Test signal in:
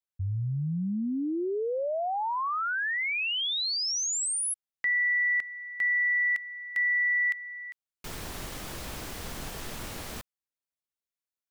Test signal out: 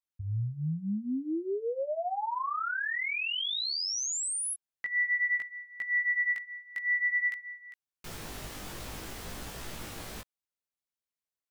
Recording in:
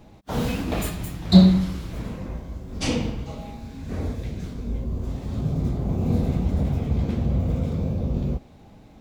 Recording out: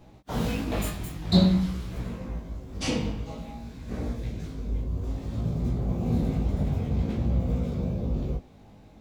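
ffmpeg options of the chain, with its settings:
-af "flanger=delay=16.5:depth=3.2:speed=0.52"

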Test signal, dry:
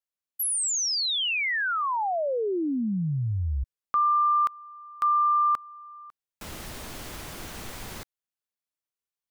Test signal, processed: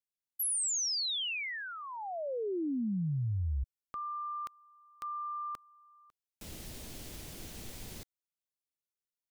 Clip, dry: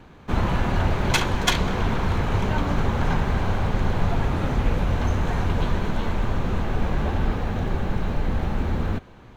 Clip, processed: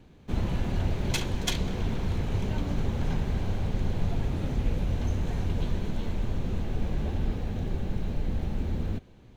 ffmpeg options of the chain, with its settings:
-af "equalizer=f=1.2k:t=o:w=1.7:g=-11.5,volume=-5dB"

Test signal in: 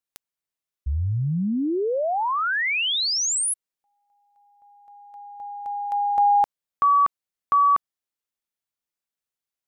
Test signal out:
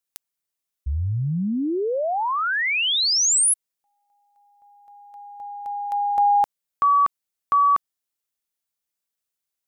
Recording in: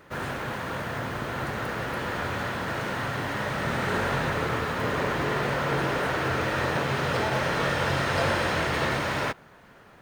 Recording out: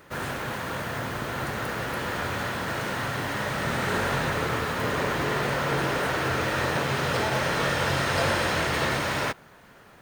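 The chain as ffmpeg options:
-af "highshelf=f=4.8k:g=7"

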